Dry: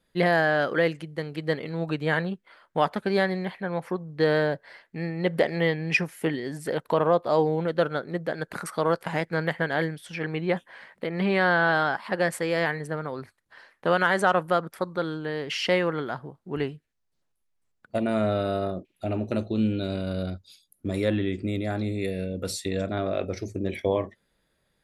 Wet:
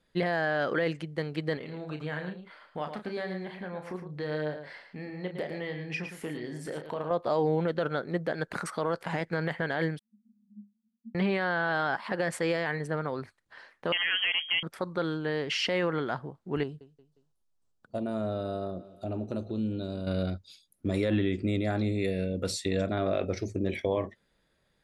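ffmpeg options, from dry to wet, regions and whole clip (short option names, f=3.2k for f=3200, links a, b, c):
-filter_complex "[0:a]asettb=1/sr,asplit=3[a][b][c];[a]atrim=end=1.574[d];[b]atrim=start=1.57:end=7.11,asetpts=PTS-STARTPTS,afade=t=in:d=0.004:c=qsin,afade=t=out:st=5.536:d=0.004:c=qsin,acompressor=threshold=-41dB:ratio=2:attack=3.2:release=140:knee=1:detection=peak,asplit=2[e][f];[f]adelay=33,volume=-8dB[g];[e][g]amix=inputs=2:normalize=0,atrim=end_sample=244314,aecho=1:1:111:0.376,atrim=end_sample=244314[h];[c]atrim=start=7.106[i];[d][h]acrossfade=d=0.004:c1=hsin:c2=qsin[j];[j][i]acrossfade=d=0.004:c1=qsin:c2=hsin,asettb=1/sr,asplit=3[k][l][m];[k]atrim=end=9.994[n];[l]atrim=start=9.99:end=11.15,asetpts=PTS-STARTPTS,afade=t=in:d=0.004:c=qsin,afade=t=out:st=1.156:d=0.004:c=qsin,acrusher=bits=7:mix=0:aa=0.5,asuperpass=centerf=220:order=12:qfactor=6.2[o];[m]atrim=start=11.146[p];[n][o]acrossfade=d=0.004:c1=hsin:c2=qsin[q];[q][p]acrossfade=d=0.004:c1=qsin:c2=hsin,asettb=1/sr,asplit=3[r][s][t];[r]atrim=end=13.924[u];[s]atrim=start=13.92:end=14.63,asetpts=PTS-STARTPTS,afade=t=in:d=0.004:c=qsin,afade=t=out:st=0.706:d=0.004:c=qsin,aeval=exprs='(tanh(7.08*val(0)+0.2)-tanh(0.2))/7.08':c=same,lowpass=f=2.9k:t=q:w=0.5098,lowpass=f=2.9k:t=q:w=0.6013,lowpass=f=2.9k:t=q:w=0.9,lowpass=f=2.9k:t=q:w=2.563,afreqshift=-3400[v];[t]atrim=start=14.626[w];[u][v]acrossfade=d=0.004:c1=hsin:c2=qsin[x];[x][w]acrossfade=d=0.004:c1=qsin:c2=hsin,asettb=1/sr,asplit=3[y][z][aa];[y]atrim=end=16.634[ab];[z]atrim=start=16.63:end=20.07,asetpts=PTS-STARTPTS,afade=t=in:d=0.004:c=qsin,afade=t=out:st=3.436:d=0.004:c=qsin,equalizer=f=2.1k:t=o:w=0.76:g=-14,aecho=1:1:178|356|534:0.0841|0.0337|0.0135,atrim=end_sample=151704,acompressor=threshold=-39dB:ratio=1.5:attack=3.2:release=140:knee=1:detection=peak[ac];[aa]atrim=start=20.066[ad];[ab][ac]acrossfade=d=0.004:c1=hsin:c2=qsin[ae];[ae][ad]acrossfade=d=0.004:c1=qsin:c2=hsin,lowpass=8.4k,alimiter=limit=-18dB:level=0:latency=1:release=40"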